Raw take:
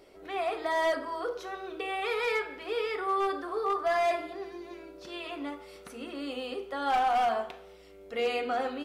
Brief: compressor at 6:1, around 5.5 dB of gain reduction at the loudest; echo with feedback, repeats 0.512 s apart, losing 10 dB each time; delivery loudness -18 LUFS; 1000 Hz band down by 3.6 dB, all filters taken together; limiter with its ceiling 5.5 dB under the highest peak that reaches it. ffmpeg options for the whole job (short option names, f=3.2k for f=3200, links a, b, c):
-af "equalizer=f=1k:t=o:g=-5.5,acompressor=threshold=-32dB:ratio=6,alimiter=level_in=6.5dB:limit=-24dB:level=0:latency=1,volume=-6.5dB,aecho=1:1:512|1024|1536|2048:0.316|0.101|0.0324|0.0104,volume=21dB"